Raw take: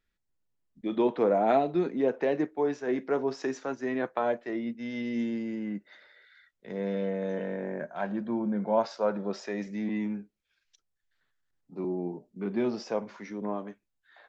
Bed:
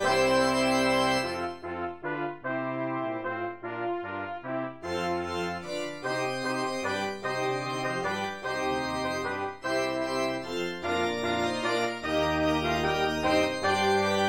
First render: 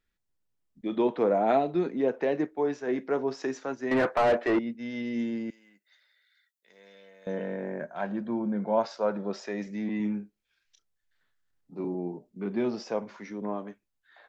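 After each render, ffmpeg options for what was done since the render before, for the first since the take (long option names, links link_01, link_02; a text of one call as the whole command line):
ffmpeg -i in.wav -filter_complex "[0:a]asettb=1/sr,asplit=3[link_01][link_02][link_03];[link_01]atrim=end=3.914[link_04];[link_02]atrim=start=3.91:end=4.59,asetpts=PTS-STARTPTS,afade=type=in:duration=0.004:curve=qsin,afade=type=out:start_time=0.676:duration=0.004:curve=qsin,asplit=2[link_05][link_06];[link_06]highpass=frequency=720:poles=1,volume=27dB,asoftclip=type=tanh:threshold=-14.5dB[link_07];[link_05][link_07]amix=inputs=2:normalize=0,lowpass=frequency=1300:poles=1,volume=-6dB[link_08];[link_03]atrim=start=4.586[link_09];[link_04][link_08]acrossfade=duration=0.004:curve1=hsin:curve2=qsin[link_10];[link_10][link_09]acrossfade=duration=0.004:curve1=qsin:curve2=hsin,asettb=1/sr,asplit=3[link_11][link_12][link_13];[link_11]atrim=end=5.504[link_14];[link_12]atrim=start=5.5:end=7.27,asetpts=PTS-STARTPTS,afade=type=in:duration=0.004:curve=qsin,afade=type=out:start_time=1.766:duration=0.004:curve=qsin,aderivative[link_15];[link_13]atrim=start=7.266[link_16];[link_14][link_15]acrossfade=duration=0.004:curve1=hsin:curve2=qsin[link_17];[link_17][link_16]acrossfade=duration=0.004:curve1=qsin:curve2=hsin,asettb=1/sr,asplit=3[link_18][link_19][link_20];[link_18]atrim=end=9.974[link_21];[link_19]atrim=start=9.97:end=11.95,asetpts=PTS-STARTPTS,afade=type=in:duration=0.004:curve=qsin,afade=type=out:start_time=1.976:duration=0.004:curve=qsin,asplit=2[link_22][link_23];[link_23]adelay=29,volume=-7dB[link_24];[link_22][link_24]amix=inputs=2:normalize=0,atrim=end_sample=87318[link_25];[link_20]atrim=start=11.946[link_26];[link_21][link_25]acrossfade=duration=0.004:curve1=hsin:curve2=qsin[link_27];[link_27][link_26]acrossfade=duration=0.004:curve1=qsin:curve2=hsin" out.wav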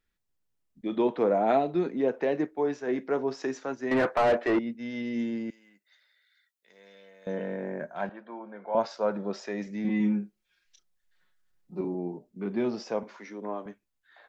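ffmpeg -i in.wav -filter_complex "[0:a]asettb=1/sr,asplit=3[link_01][link_02][link_03];[link_01]atrim=end=8.094[link_04];[link_02]atrim=start=8.09:end=8.75,asetpts=PTS-STARTPTS,afade=type=in:duration=0.004:curve=qsin,afade=type=out:start_time=0.656:duration=0.004:curve=qsin,highpass=640,lowpass=2800[link_05];[link_03]atrim=start=8.746[link_06];[link_04][link_05]acrossfade=duration=0.004:curve1=hsin:curve2=qsin[link_07];[link_07][link_06]acrossfade=duration=0.004:curve1=qsin:curve2=hsin,asettb=1/sr,asplit=3[link_08][link_09][link_10];[link_08]atrim=end=9.844[link_11];[link_09]atrim=start=9.84:end=11.81,asetpts=PTS-STARTPTS,afade=type=in:duration=0.004:curve=qsin,afade=type=out:start_time=1.966:duration=0.004:curve=qsin,aecho=1:1:5.5:0.89,atrim=end_sample=86877[link_12];[link_10]atrim=start=11.806[link_13];[link_11][link_12]acrossfade=duration=0.004:curve1=hsin:curve2=qsin[link_14];[link_14][link_13]acrossfade=duration=0.004:curve1=qsin:curve2=hsin,asettb=1/sr,asplit=3[link_15][link_16][link_17];[link_15]atrim=end=13.034[link_18];[link_16]atrim=start=13.03:end=13.66,asetpts=PTS-STARTPTS,afade=type=in:duration=0.004:curve=qsin,afade=type=out:start_time=0.626:duration=0.004:curve=qsin,highpass=290[link_19];[link_17]atrim=start=13.656[link_20];[link_18][link_19]acrossfade=duration=0.004:curve1=hsin:curve2=qsin[link_21];[link_21][link_20]acrossfade=duration=0.004:curve1=qsin:curve2=hsin" out.wav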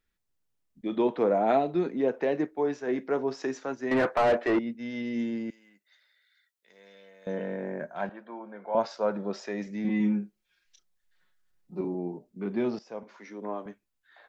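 ffmpeg -i in.wav -filter_complex "[0:a]asplit=2[link_01][link_02];[link_01]atrim=end=12.79,asetpts=PTS-STARTPTS,afade=type=out:start_time=12.786:duration=0.004:curve=hsin:silence=0.16788[link_03];[link_02]atrim=start=12.79,asetpts=PTS-STARTPTS,afade=type=in:duration=0.65:silence=0.16788[link_04];[link_03][link_04]concat=n=2:v=0:a=1" out.wav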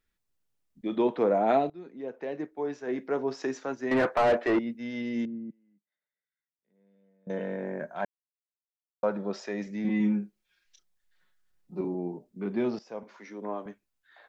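ffmpeg -i in.wav -filter_complex "[0:a]asettb=1/sr,asplit=3[link_01][link_02][link_03];[link_01]atrim=end=5.254[link_04];[link_02]atrim=start=5.25:end=7.3,asetpts=PTS-STARTPTS,afade=type=in:duration=0.004:curve=qsin,afade=type=out:start_time=2.046:duration=0.004:curve=qsin,bandpass=frequency=170:width_type=q:width=2[link_05];[link_03]atrim=start=7.296[link_06];[link_04][link_05]acrossfade=duration=0.004:curve1=hsin:curve2=qsin[link_07];[link_07][link_06]acrossfade=duration=0.004:curve1=qsin:curve2=hsin,asplit=4[link_08][link_09][link_10][link_11];[link_08]atrim=end=1.7,asetpts=PTS-STARTPTS,afade=type=out:start_time=1.696:duration=0.004:curve=hsin:silence=0.0891251[link_12];[link_09]atrim=start=1.7:end=8.05,asetpts=PTS-STARTPTS,afade=type=in:duration=1.71:silence=0.0891251,afade=type=out:start_time=6.346:duration=0.004:curve=hsin[link_13];[link_10]atrim=start=8.05:end=9.03,asetpts=PTS-STARTPTS,volume=0[link_14];[link_11]atrim=start=9.03,asetpts=PTS-STARTPTS,afade=type=in:duration=0.004:curve=hsin[link_15];[link_12][link_13][link_14][link_15]concat=n=4:v=0:a=1" out.wav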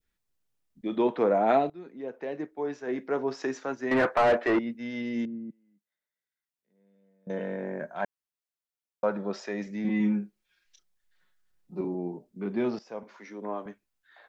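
ffmpeg -i in.wav -af "adynamicequalizer=threshold=0.0141:dfrequency=1500:dqfactor=0.79:tfrequency=1500:tqfactor=0.79:attack=5:release=100:ratio=0.375:range=1.5:mode=boostabove:tftype=bell" out.wav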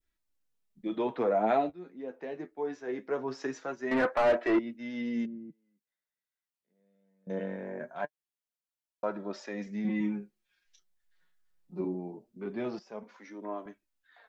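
ffmpeg -i in.wav -af "flanger=delay=3:depth=8.8:regen=36:speed=0.22:shape=sinusoidal" out.wav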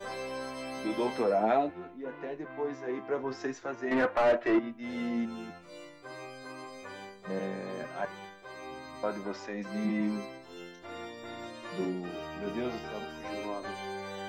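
ffmpeg -i in.wav -i bed.wav -filter_complex "[1:a]volume=-14.5dB[link_01];[0:a][link_01]amix=inputs=2:normalize=0" out.wav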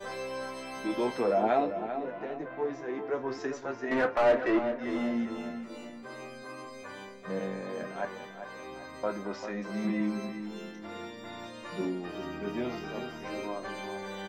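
ffmpeg -i in.wav -filter_complex "[0:a]asplit=2[link_01][link_02];[link_02]adelay=25,volume=-12dB[link_03];[link_01][link_03]amix=inputs=2:normalize=0,asplit=2[link_04][link_05];[link_05]adelay=393,lowpass=frequency=2900:poles=1,volume=-9dB,asplit=2[link_06][link_07];[link_07]adelay=393,lowpass=frequency=2900:poles=1,volume=0.41,asplit=2[link_08][link_09];[link_09]adelay=393,lowpass=frequency=2900:poles=1,volume=0.41,asplit=2[link_10][link_11];[link_11]adelay=393,lowpass=frequency=2900:poles=1,volume=0.41,asplit=2[link_12][link_13];[link_13]adelay=393,lowpass=frequency=2900:poles=1,volume=0.41[link_14];[link_04][link_06][link_08][link_10][link_12][link_14]amix=inputs=6:normalize=0" out.wav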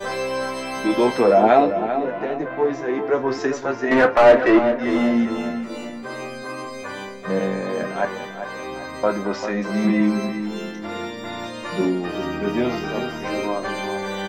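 ffmpeg -i in.wav -af "volume=12dB" out.wav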